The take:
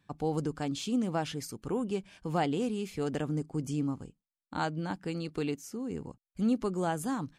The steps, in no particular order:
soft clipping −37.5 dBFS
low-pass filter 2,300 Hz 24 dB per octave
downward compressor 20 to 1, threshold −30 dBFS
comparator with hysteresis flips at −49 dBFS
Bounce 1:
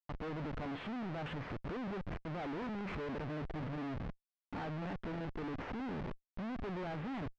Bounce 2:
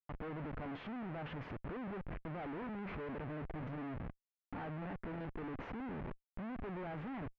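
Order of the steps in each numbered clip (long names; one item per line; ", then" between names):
downward compressor, then comparator with hysteresis, then low-pass filter, then soft clipping
downward compressor, then soft clipping, then comparator with hysteresis, then low-pass filter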